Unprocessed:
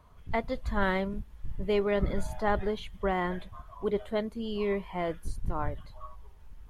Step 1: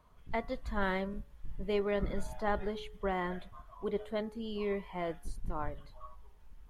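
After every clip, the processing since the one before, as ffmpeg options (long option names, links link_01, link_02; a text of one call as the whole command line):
ffmpeg -i in.wav -af "equalizer=frequency=84:width_type=o:width=0.85:gain=-7,bandreject=frequency=141.8:width_type=h:width=4,bandreject=frequency=283.6:width_type=h:width=4,bandreject=frequency=425.4:width_type=h:width=4,bandreject=frequency=567.2:width_type=h:width=4,bandreject=frequency=709:width_type=h:width=4,bandreject=frequency=850.8:width_type=h:width=4,bandreject=frequency=992.6:width_type=h:width=4,bandreject=frequency=1134.4:width_type=h:width=4,bandreject=frequency=1276.2:width_type=h:width=4,bandreject=frequency=1418:width_type=h:width=4,bandreject=frequency=1559.8:width_type=h:width=4,bandreject=frequency=1701.6:width_type=h:width=4,bandreject=frequency=1843.4:width_type=h:width=4,bandreject=frequency=1985.2:width_type=h:width=4,volume=-4.5dB" out.wav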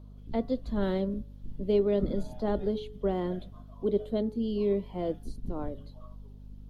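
ffmpeg -i in.wav -filter_complex "[0:a]equalizer=frequency=250:width_type=o:width=1:gain=11,equalizer=frequency=500:width_type=o:width=1:gain=6,equalizer=frequency=1000:width_type=o:width=1:gain=-6,equalizer=frequency=2000:width_type=o:width=1:gain=-11,equalizer=frequency=4000:width_type=o:width=1:gain=7,equalizer=frequency=8000:width_type=o:width=1:gain=-4,acrossover=split=230|490|4500[link_01][link_02][link_03][link_04];[link_04]alimiter=level_in=27.5dB:limit=-24dB:level=0:latency=1:release=307,volume=-27.5dB[link_05];[link_01][link_02][link_03][link_05]amix=inputs=4:normalize=0,aeval=exprs='val(0)+0.00501*(sin(2*PI*50*n/s)+sin(2*PI*2*50*n/s)/2+sin(2*PI*3*50*n/s)/3+sin(2*PI*4*50*n/s)/4+sin(2*PI*5*50*n/s)/5)':channel_layout=same" out.wav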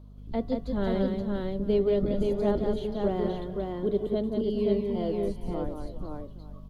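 ffmpeg -i in.wav -af "aecho=1:1:180|411|526|856:0.562|0.133|0.668|0.119" out.wav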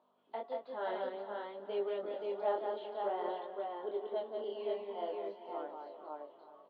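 ffmpeg -i in.wav -af "flanger=delay=20:depth=7.4:speed=0.55,highpass=frequency=470:width=0.5412,highpass=frequency=470:width=1.3066,equalizer=frequency=470:width_type=q:width=4:gain=-6,equalizer=frequency=860:width_type=q:width=4:gain=6,equalizer=frequency=2200:width_type=q:width=4:gain=-5,lowpass=frequency=3100:width=0.5412,lowpass=frequency=3100:width=1.3066,aecho=1:1:391|782|1173|1564|1955:0.133|0.0747|0.0418|0.0234|0.0131" out.wav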